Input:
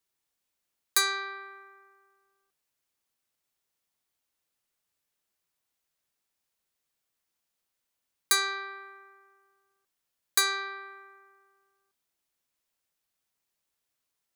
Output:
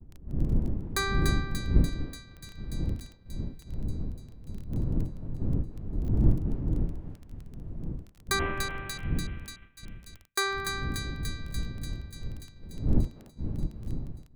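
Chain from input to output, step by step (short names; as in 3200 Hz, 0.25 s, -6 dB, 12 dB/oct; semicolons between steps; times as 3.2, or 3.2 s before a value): 8.39–8.98 CVSD 16 kbps; wind noise 180 Hz -41 dBFS; tilt -3 dB/oct; thinning echo 0.292 s, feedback 76%, high-pass 1200 Hz, level -5 dB; dynamic EQ 310 Hz, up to +5 dB, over -51 dBFS, Q 3.5; AGC gain up to 8 dB; expander -33 dBFS; crackle 11/s -29 dBFS; gain -7 dB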